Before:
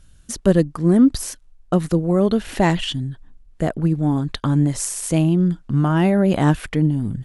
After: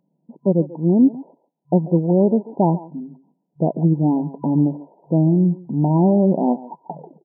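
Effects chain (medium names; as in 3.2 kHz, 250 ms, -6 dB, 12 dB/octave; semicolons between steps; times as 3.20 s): tape stop on the ending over 0.90 s; level rider; speakerphone echo 140 ms, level -14 dB; FFT band-pass 140–1000 Hz; trim -3.5 dB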